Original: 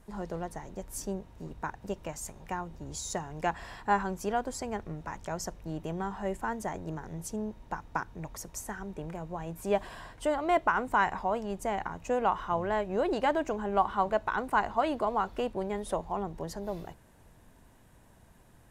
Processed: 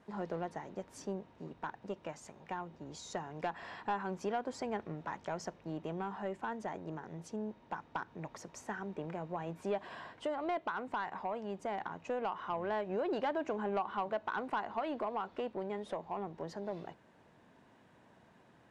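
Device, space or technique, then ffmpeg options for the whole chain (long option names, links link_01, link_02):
AM radio: -af "highpass=180,lowpass=3900,acompressor=threshold=-30dB:ratio=4,asoftclip=type=tanh:threshold=-25dB,tremolo=f=0.22:d=0.28"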